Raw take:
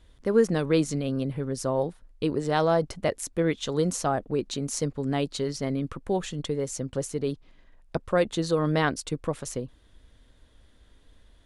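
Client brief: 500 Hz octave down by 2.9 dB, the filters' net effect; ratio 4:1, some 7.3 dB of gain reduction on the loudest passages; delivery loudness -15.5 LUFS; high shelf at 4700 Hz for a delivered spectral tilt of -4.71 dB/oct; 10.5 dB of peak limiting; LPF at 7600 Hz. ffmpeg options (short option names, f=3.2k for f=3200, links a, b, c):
-af "lowpass=7.6k,equalizer=f=500:t=o:g=-3.5,highshelf=f=4.7k:g=4.5,acompressor=threshold=-27dB:ratio=4,volume=20dB,alimiter=limit=-4.5dB:level=0:latency=1"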